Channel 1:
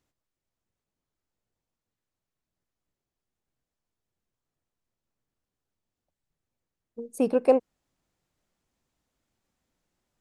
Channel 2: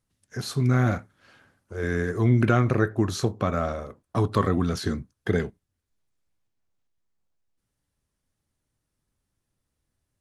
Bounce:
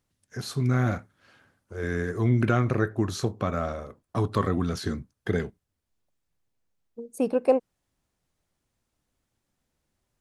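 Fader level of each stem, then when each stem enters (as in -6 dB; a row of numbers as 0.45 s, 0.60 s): -1.0 dB, -2.5 dB; 0.00 s, 0.00 s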